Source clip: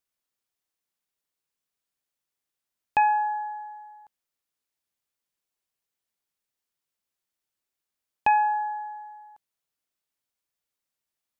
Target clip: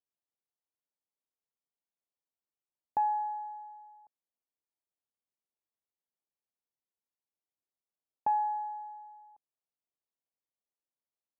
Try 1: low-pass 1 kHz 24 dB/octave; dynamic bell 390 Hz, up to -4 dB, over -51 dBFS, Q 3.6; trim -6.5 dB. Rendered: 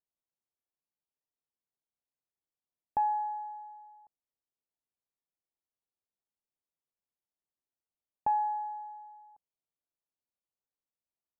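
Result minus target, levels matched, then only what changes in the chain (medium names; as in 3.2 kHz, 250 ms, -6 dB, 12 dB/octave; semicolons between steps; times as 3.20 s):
125 Hz band +4.5 dB
add after dynamic bell: high-pass 170 Hz 6 dB/octave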